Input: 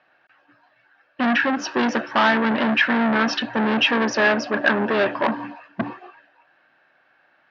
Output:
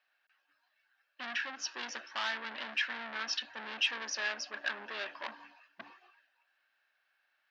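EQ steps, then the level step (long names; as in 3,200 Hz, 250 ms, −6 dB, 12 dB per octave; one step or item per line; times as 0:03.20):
first difference
−3.5 dB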